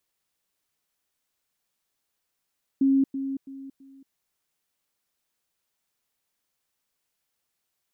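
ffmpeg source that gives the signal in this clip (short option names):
-f lavfi -i "aevalsrc='pow(10,(-17-10*floor(t/0.33))/20)*sin(2*PI*271*t)*clip(min(mod(t,0.33),0.23-mod(t,0.33))/0.005,0,1)':d=1.32:s=44100"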